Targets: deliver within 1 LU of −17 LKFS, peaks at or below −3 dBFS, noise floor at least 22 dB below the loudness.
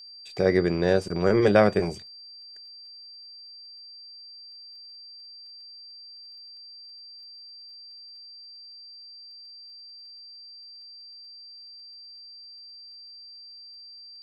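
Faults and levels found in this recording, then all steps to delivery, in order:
crackle rate 18 per second; interfering tone 4,700 Hz; level of the tone −43 dBFS; integrated loudness −23.0 LKFS; sample peak −5.5 dBFS; target loudness −17.0 LKFS
→ click removal
notch filter 4,700 Hz, Q 30
level +6 dB
brickwall limiter −3 dBFS

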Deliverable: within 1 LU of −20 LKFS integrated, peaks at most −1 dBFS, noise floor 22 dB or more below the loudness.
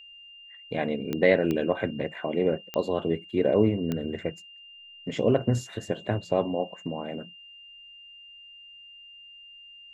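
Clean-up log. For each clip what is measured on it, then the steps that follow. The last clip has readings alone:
number of clicks 4; interfering tone 2,800 Hz; level of the tone −46 dBFS; integrated loudness −27.5 LKFS; sample peak −6.5 dBFS; target loudness −20.0 LKFS
→ click removal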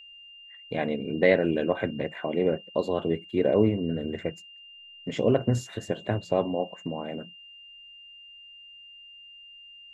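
number of clicks 0; interfering tone 2,800 Hz; level of the tone −46 dBFS
→ notch filter 2,800 Hz, Q 30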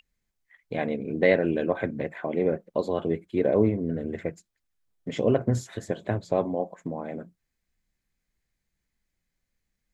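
interfering tone none found; integrated loudness −27.5 LKFS; sample peak −7.0 dBFS; target loudness −20.0 LKFS
→ level +7.5 dB
brickwall limiter −1 dBFS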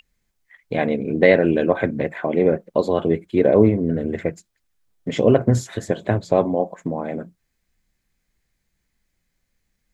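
integrated loudness −20.0 LKFS; sample peak −1.0 dBFS; background noise floor −74 dBFS

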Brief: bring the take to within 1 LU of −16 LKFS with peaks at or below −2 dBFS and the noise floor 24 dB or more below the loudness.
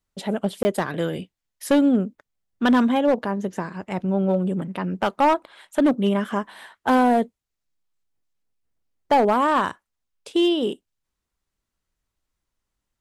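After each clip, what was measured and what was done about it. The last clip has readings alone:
share of clipped samples 0.9%; peaks flattened at −12.0 dBFS; number of dropouts 1; longest dropout 20 ms; integrated loudness −22.5 LKFS; sample peak −12.0 dBFS; target loudness −16.0 LKFS
→ clipped peaks rebuilt −12 dBFS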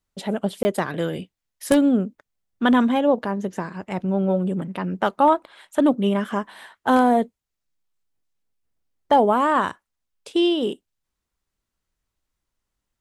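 share of clipped samples 0.0%; number of dropouts 1; longest dropout 20 ms
→ repair the gap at 0:00.63, 20 ms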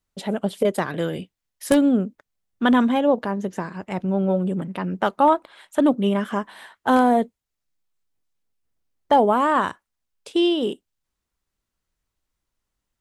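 number of dropouts 0; integrated loudness −21.5 LKFS; sample peak −3.0 dBFS; target loudness −16.0 LKFS
→ level +5.5 dB
brickwall limiter −2 dBFS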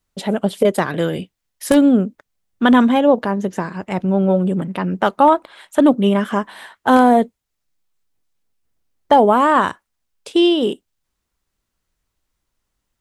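integrated loudness −16.5 LKFS; sample peak −2.0 dBFS; background noise floor −77 dBFS

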